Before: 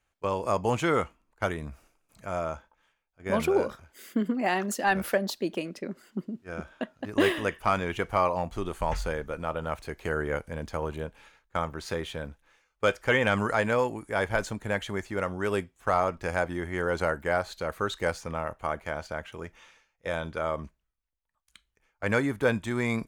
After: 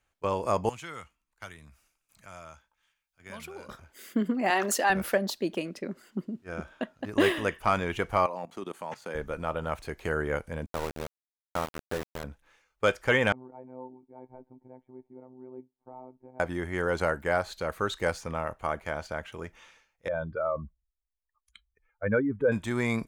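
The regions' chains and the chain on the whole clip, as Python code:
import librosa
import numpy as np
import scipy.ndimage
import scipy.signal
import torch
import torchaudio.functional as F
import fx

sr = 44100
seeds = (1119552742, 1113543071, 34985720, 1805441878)

y = fx.chain(x, sr, fx.tone_stack(knobs='5-5-5'),
    fx.band_squash(depth_pct=40), at=(0.69, 3.69))
y = fx.chain(y, sr, fx.highpass(hz=400.0, slope=12),
    fx.env_flatten(amount_pct=50), at=(4.5, 4.9))
y = fx.chain(y, sr, fx.highpass(hz=170.0, slope=24),
    fx.level_steps(step_db=18), at=(8.26, 9.15))
y = fx.chain(y, sr, fx.gaussian_blur(sigma=4.1),
    fx.sample_gate(floor_db=-31.0), at=(10.66, 12.24))
y = fx.chain(y, sr, fx.formant_cascade(vowel='u'),
    fx.low_shelf(hz=320.0, db=-8.5),
    fx.robotise(hz=128.0), at=(13.32, 16.4))
y = fx.chain(y, sr, fx.spec_expand(power=2.1),
    fx.peak_eq(hz=1200.0, db=5.0, octaves=0.5), at=(20.08, 22.52))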